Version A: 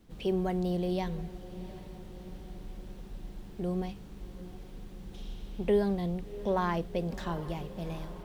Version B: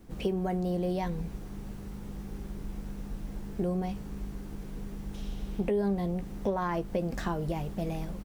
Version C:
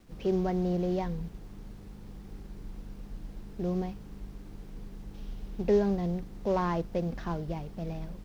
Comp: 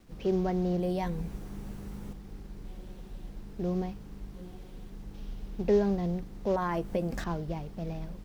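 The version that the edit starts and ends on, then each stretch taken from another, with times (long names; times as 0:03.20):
C
0:00.80–0:02.13: punch in from B
0:02.65–0:03.29: punch in from A
0:04.34–0:04.90: punch in from A
0:06.56–0:07.24: punch in from B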